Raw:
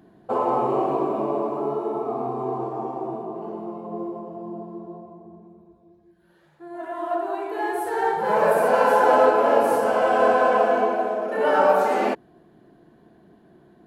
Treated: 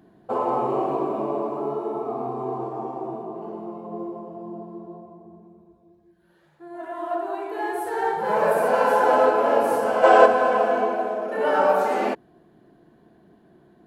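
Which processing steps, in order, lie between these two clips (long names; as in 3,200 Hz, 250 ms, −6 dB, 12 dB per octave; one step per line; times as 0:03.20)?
gain on a spectral selection 0:10.04–0:10.26, 300–8,700 Hz +8 dB
level −1.5 dB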